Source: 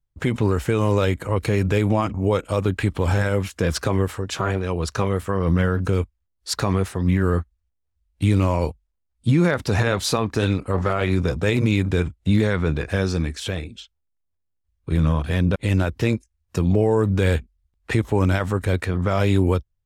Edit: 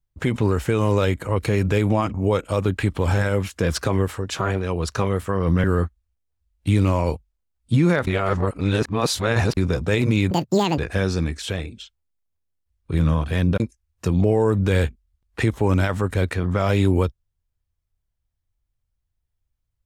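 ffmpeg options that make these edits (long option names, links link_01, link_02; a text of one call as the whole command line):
ffmpeg -i in.wav -filter_complex "[0:a]asplit=7[link_01][link_02][link_03][link_04][link_05][link_06][link_07];[link_01]atrim=end=5.642[link_08];[link_02]atrim=start=7.188:end=9.622[link_09];[link_03]atrim=start=9.618:end=11.122,asetpts=PTS-STARTPTS,areverse[link_10];[link_04]atrim=start=11.118:end=11.864[link_11];[link_05]atrim=start=11.86:end=12.76,asetpts=PTS-STARTPTS,asetrate=84672,aresample=44100[link_12];[link_06]atrim=start=12.756:end=15.582[link_13];[link_07]atrim=start=16.108[link_14];[link_08][link_09]acrossfade=duration=0.004:curve1=hsin:curve2=hsin[link_15];[link_15][link_10]acrossfade=duration=0.004:curve1=hsin:curve2=hsin[link_16];[link_16][link_11]acrossfade=duration=0.004:curve1=hsin:curve2=hsin[link_17];[link_17][link_12]acrossfade=duration=0.004:curve1=hsin:curve2=hsin[link_18];[link_18][link_13]acrossfade=duration=0.004:curve1=hsin:curve2=hsin[link_19];[link_19][link_14]acrossfade=duration=0.004:curve1=hsin:curve2=hsin" out.wav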